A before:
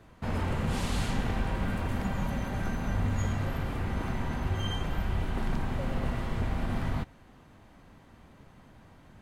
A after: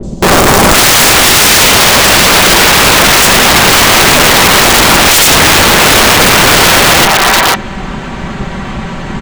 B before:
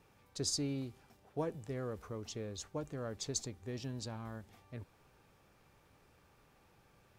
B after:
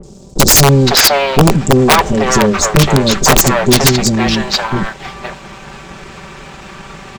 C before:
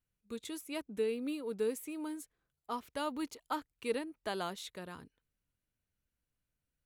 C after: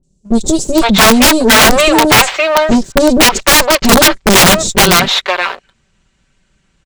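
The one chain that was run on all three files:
lower of the sound and its delayed copy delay 5.2 ms
elliptic low-pass filter 7,700 Hz, stop band 80 dB
three-band delay without the direct sound lows, highs, mids 30/510 ms, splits 540/5,300 Hz
wrap-around overflow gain 37 dB
leveller curve on the samples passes 1
normalise the peak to −1.5 dBFS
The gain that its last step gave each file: +35.5, +35.5, +35.5 decibels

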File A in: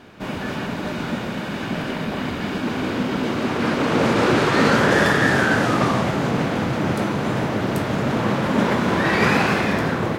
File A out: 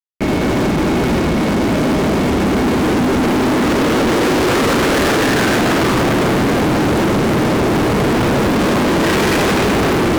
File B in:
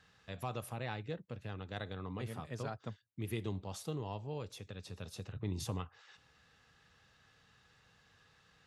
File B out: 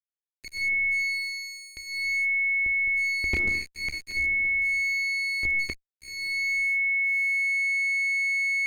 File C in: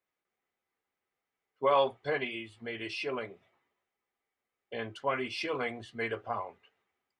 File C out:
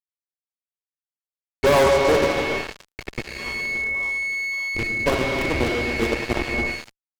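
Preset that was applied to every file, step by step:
slack as between gear wheels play −22 dBFS
parametric band 66 Hz +14.5 dB 0.44 octaves
echo with a time of its own for lows and highs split 850 Hz, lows 283 ms, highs 573 ms, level −15.5 dB
comb and all-pass reverb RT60 2.4 s, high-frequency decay 0.55×, pre-delay 0 ms, DRR 5 dB
steady tone 2,200 Hz −42 dBFS
parametric band 350 Hz +8.5 dB 1.1 octaves
fuzz pedal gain 32 dB, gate −38 dBFS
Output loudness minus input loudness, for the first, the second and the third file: +6.0, +19.0, +12.0 LU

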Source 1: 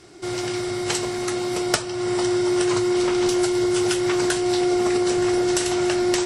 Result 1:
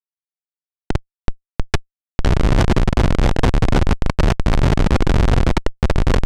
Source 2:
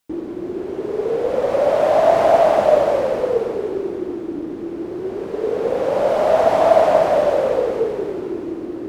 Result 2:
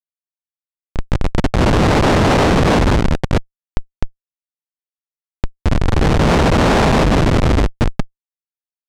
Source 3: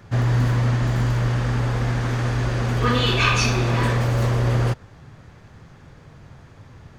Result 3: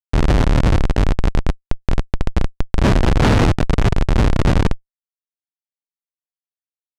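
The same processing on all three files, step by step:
ceiling on every frequency bin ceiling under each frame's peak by 25 dB
comparator with hysteresis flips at −12 dBFS
high-frequency loss of the air 73 metres
normalise the peak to −6 dBFS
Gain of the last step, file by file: +10.0, +6.5, +10.0 decibels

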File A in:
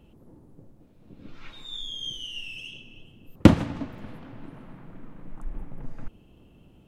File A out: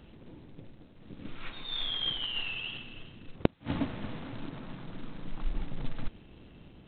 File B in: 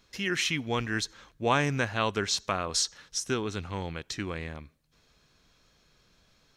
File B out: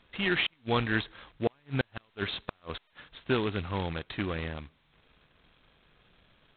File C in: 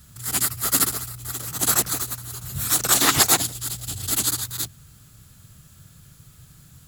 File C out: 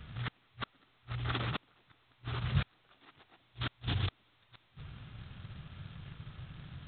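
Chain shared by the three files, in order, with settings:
gate with flip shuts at −16 dBFS, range −42 dB
level +2 dB
G.726 16 kbit/s 8,000 Hz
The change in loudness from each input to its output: −10.5, −2.5, −19.0 LU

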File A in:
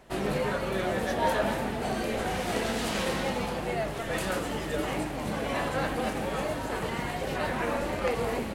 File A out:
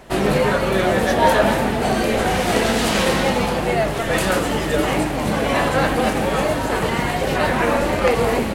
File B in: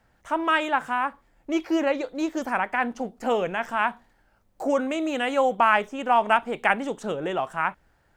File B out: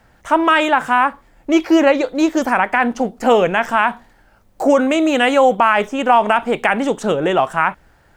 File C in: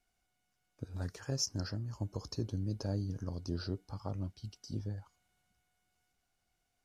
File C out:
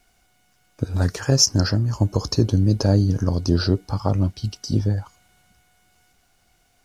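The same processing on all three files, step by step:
boost into a limiter +13.5 dB
normalise the peak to −3 dBFS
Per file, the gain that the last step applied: −2.0, −2.0, +5.0 decibels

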